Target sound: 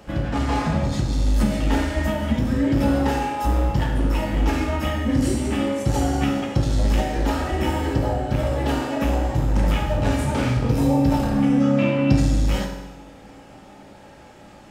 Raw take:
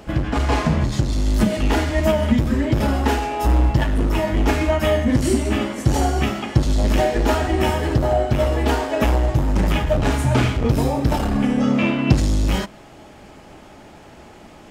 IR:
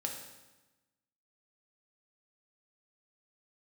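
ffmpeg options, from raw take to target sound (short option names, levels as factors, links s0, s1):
-filter_complex "[0:a]acrossover=split=230[s0][s1];[s1]acompressor=threshold=0.126:ratio=6[s2];[s0][s2]amix=inputs=2:normalize=0[s3];[1:a]atrim=start_sample=2205[s4];[s3][s4]afir=irnorm=-1:irlink=0,volume=0.668"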